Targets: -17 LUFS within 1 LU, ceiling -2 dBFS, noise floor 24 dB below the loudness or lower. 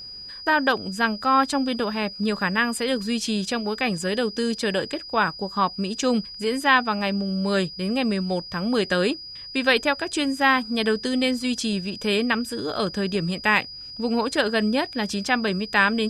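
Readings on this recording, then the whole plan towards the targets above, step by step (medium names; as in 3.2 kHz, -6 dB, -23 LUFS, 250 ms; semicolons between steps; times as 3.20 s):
steady tone 4.9 kHz; tone level -36 dBFS; loudness -23.5 LUFS; peak level -4.0 dBFS; loudness target -17.0 LUFS
-> band-stop 4.9 kHz, Q 30; trim +6.5 dB; peak limiter -2 dBFS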